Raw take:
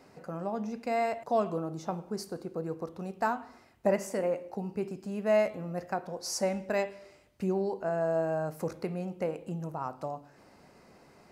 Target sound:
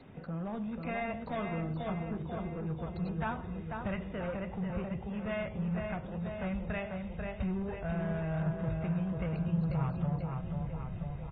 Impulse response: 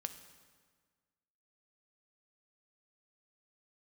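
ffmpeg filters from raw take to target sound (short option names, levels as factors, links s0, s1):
-filter_complex "[0:a]bass=f=250:g=13,treble=f=4000:g=15,asplit=2[s0][s1];[s1]acompressor=threshold=0.0141:ratio=6,volume=0.891[s2];[s0][s2]amix=inputs=2:normalize=0,aecho=1:1:491|982|1473|1964|2455|2946|3437|3928:0.531|0.303|0.172|0.0983|0.056|0.0319|0.0182|0.0104,asubboost=boost=10.5:cutoff=79,acrossover=split=160|1100[s3][s4][s5];[s4]asoftclip=type=tanh:threshold=0.0316[s6];[s3][s6][s5]amix=inputs=3:normalize=0,volume=0.473" -ar 32000 -c:a aac -b:a 16k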